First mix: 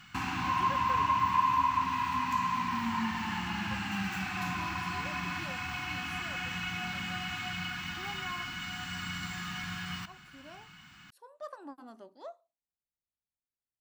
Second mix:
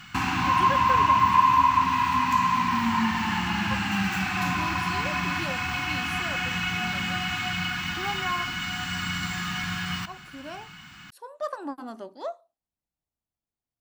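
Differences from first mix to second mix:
speech +11.5 dB
background +8.0 dB

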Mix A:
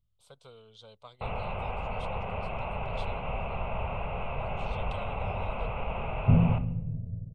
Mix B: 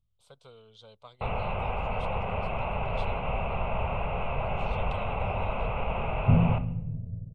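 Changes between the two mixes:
first sound +3.5 dB
master: add high-shelf EQ 8,000 Hz −5 dB

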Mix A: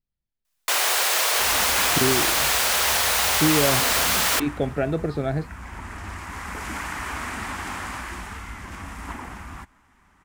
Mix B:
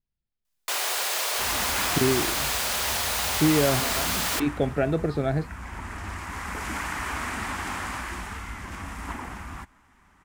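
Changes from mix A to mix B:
first sound −5.0 dB
reverb: on, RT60 0.35 s

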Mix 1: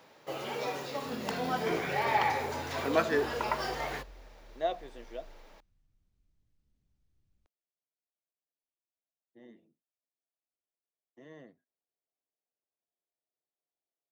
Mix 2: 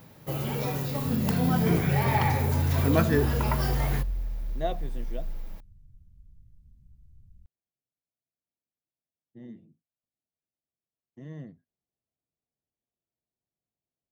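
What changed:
second sound: send −6.0 dB
master: remove three-way crossover with the lows and the highs turned down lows −23 dB, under 340 Hz, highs −19 dB, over 7,500 Hz

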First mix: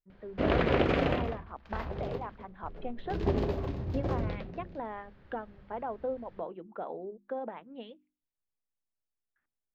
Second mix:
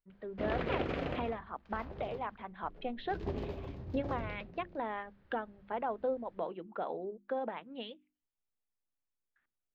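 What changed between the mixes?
speech: add high-shelf EQ 2,300 Hz +11.5 dB
background −9.0 dB

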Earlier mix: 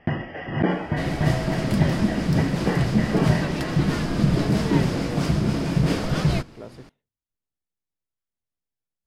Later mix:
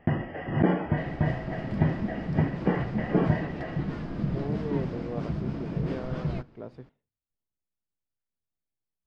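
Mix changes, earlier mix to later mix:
second sound −9.0 dB
master: add head-to-tape spacing loss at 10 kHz 27 dB

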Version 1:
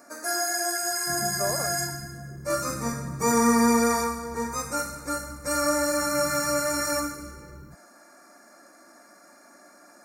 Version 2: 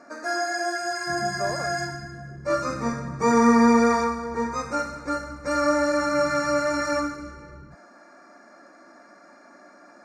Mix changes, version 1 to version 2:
first sound +4.0 dB
master: add high-frequency loss of the air 160 metres

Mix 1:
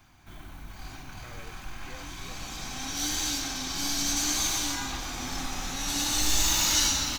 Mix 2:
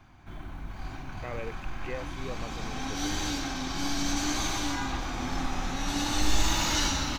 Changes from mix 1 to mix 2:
background −9.5 dB
master: remove first-order pre-emphasis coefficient 0.8

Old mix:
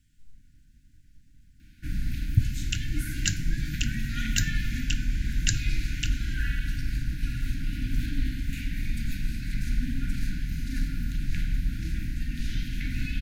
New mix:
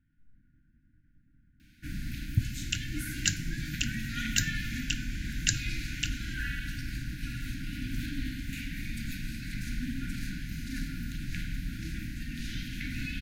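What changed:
speech: add low-pass with resonance 1,100 Hz, resonance Q 7.2
master: add low-shelf EQ 93 Hz −11.5 dB

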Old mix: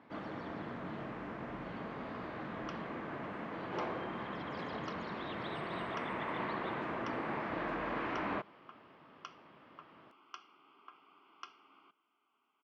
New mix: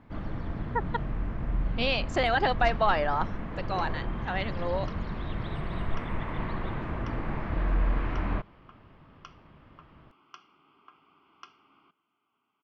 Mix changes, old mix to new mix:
speech: unmuted
master: remove high-pass filter 290 Hz 12 dB per octave

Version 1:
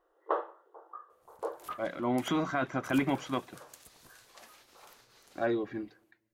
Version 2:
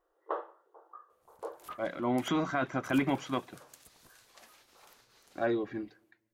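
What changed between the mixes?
first sound −4.5 dB
second sound: send −10.5 dB

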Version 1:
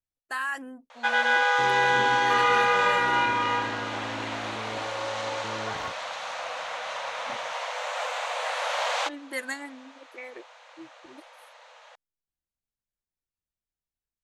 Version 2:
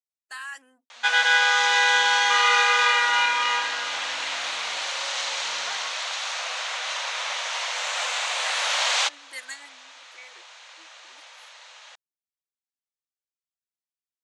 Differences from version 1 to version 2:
speech −10.0 dB
second sound −6.5 dB
master: add meter weighting curve ITU-R 468

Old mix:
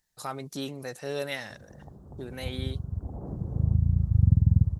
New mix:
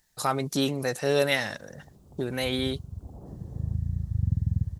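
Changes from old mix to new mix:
speech +9.0 dB
background −6.0 dB

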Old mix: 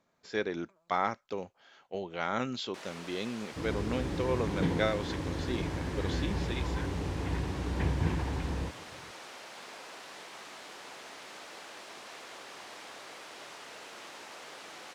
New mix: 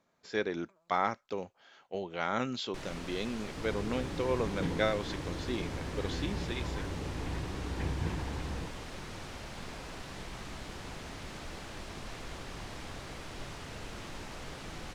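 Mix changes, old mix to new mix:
first sound: remove high-pass filter 470 Hz 12 dB per octave
second sound −4.5 dB

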